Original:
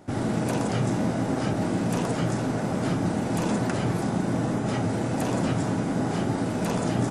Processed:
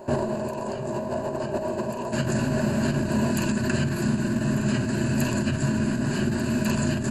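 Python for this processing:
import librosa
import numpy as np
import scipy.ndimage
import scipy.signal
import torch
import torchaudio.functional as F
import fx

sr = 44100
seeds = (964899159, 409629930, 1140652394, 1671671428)

y = fx.band_shelf(x, sr, hz=640.0, db=fx.steps((0.0, 8.0), (2.11, -8.0)), octaves=1.7)
y = y + 10.0 ** (-13.0 / 20.0) * np.pad(y, (int(1194 * sr / 1000.0), 0))[:len(y)]
y = fx.over_compress(y, sr, threshold_db=-26.0, ratio=-0.5)
y = fx.ripple_eq(y, sr, per_octave=1.4, db=14)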